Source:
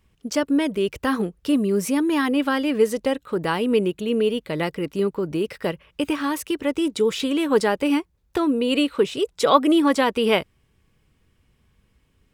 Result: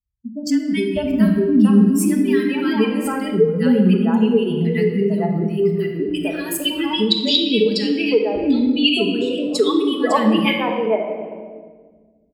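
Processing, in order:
spectral dynamics exaggerated over time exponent 2
high-pass filter 45 Hz
notch filter 6,000 Hz, Q 5.5
dynamic equaliser 1,500 Hz, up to −6 dB, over −44 dBFS, Q 2.4
mains-hum notches 50/100/150/200 Hz
automatic gain control gain up to 7 dB
0:06.45–0:08.77: drawn EQ curve 530 Hz 0 dB, 1,400 Hz −16 dB, 2,600 Hz +7 dB, 4,400 Hz +14 dB, 7,900 Hz −11 dB
three-band delay without the direct sound lows, highs, mids 150/600 ms, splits 350/1,400 Hz
rectangular room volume 1,400 cubic metres, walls mixed, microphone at 1.5 metres
downward compressor 1.5 to 1, threshold −30 dBFS, peak gain reduction 8 dB
hollow resonant body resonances 200/1,700 Hz, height 8 dB, ringing for 90 ms
level +6 dB

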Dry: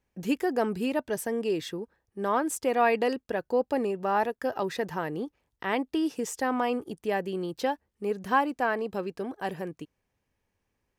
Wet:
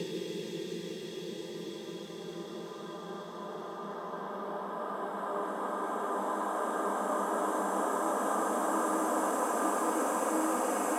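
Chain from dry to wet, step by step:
mains-hum notches 50/100/150/200/250/300/350/400 Hz
extreme stretch with random phases 15×, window 1.00 s, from 0:01.76
level −2.5 dB

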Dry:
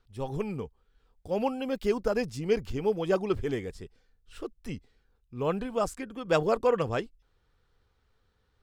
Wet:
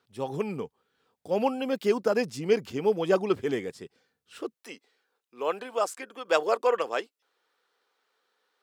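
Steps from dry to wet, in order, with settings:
Bessel high-pass filter 200 Hz, order 4, from 0:04.53 520 Hz
level +3.5 dB

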